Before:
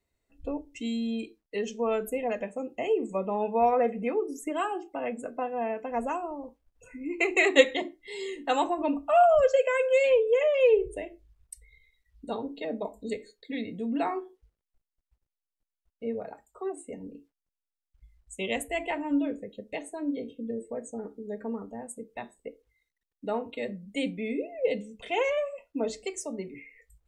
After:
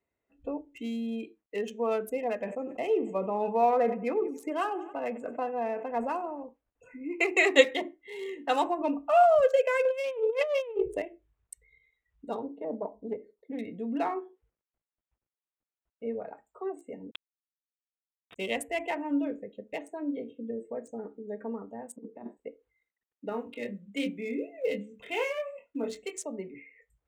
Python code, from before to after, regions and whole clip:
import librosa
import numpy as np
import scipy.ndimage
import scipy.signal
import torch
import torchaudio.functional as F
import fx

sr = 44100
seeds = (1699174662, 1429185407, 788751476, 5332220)

y = fx.chain(x, sr, fx.echo_feedback(ms=93, feedback_pct=54, wet_db=-20),
    fx.sustainer(db_per_s=89.0), at=(2.39, 6.43))
y = fx.chain(y, sr, fx.self_delay(depth_ms=0.077),
    fx.over_compress(threshold_db=-27.0, ratio=-0.5), at=(9.85, 11.02))
y = fx.chain(y, sr, fx.savgol(points=65),
    fx.doppler_dist(depth_ms=0.11), at=(12.47, 13.59))
y = fx.chain(y, sr, fx.peak_eq(hz=180.0, db=-6.5, octaves=0.75),
    fx.quant_companded(bits=2),
    fx.freq_invert(carrier_hz=3700), at=(17.11, 18.36))
y = fx.chain(y, sr, fx.peak_eq(hz=270.0, db=11.5, octaves=1.5),
    fx.over_compress(threshold_db=-38.0, ratio=-0.5),
    fx.bandpass_q(hz=340.0, q=0.51), at=(21.96, 22.37))
y = fx.chain(y, sr, fx.block_float(bits=7),
    fx.peak_eq(hz=720.0, db=-8.5, octaves=0.96),
    fx.doubler(ms=25.0, db=-5.5), at=(23.29, 26.22))
y = fx.wiener(y, sr, points=9)
y = fx.highpass(y, sr, hz=220.0, slope=6)